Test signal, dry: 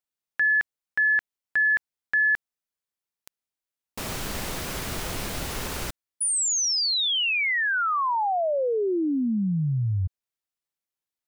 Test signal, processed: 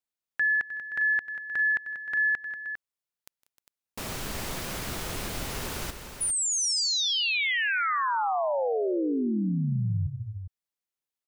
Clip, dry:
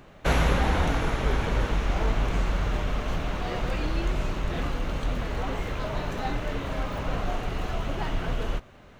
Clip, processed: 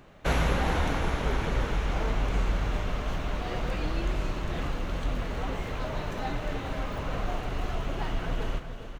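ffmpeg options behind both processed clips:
-af "aecho=1:1:159|190|308|403:0.106|0.106|0.2|0.316,volume=-3dB"

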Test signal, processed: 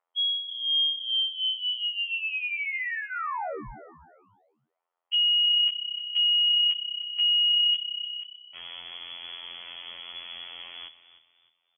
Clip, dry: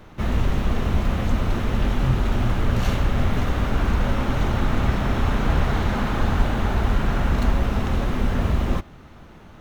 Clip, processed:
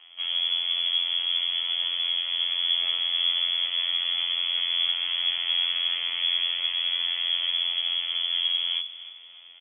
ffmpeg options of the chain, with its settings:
-filter_complex "[0:a]equalizer=f=150:w=0.6:g=5,afftfilt=real='hypot(re,im)*cos(PI*b)':imag='0':win_size=2048:overlap=0.75,lowpass=f=2.9k:t=q:w=0.5098,lowpass=f=2.9k:t=q:w=0.6013,lowpass=f=2.9k:t=q:w=0.9,lowpass=f=2.9k:t=q:w=2.563,afreqshift=-3400,bandreject=f=1.6k:w=8.5,acrossover=split=490|1200[a][b][c];[b]acompressor=mode=upward:threshold=-57dB:ratio=2.5[d];[a][d][c]amix=inputs=3:normalize=0,adynamicequalizer=threshold=0.00251:dfrequency=220:dqfactor=1.2:tfrequency=220:tqfactor=1.2:attack=5:release=100:ratio=0.375:range=2:mode=cutabove:tftype=bell,asplit=4[e][f][g][h];[f]adelay=305,afreqshift=32,volume=-15dB[i];[g]adelay=610,afreqshift=64,volume=-24.4dB[j];[h]adelay=915,afreqshift=96,volume=-33.7dB[k];[e][i][j][k]amix=inputs=4:normalize=0,volume=-5dB"

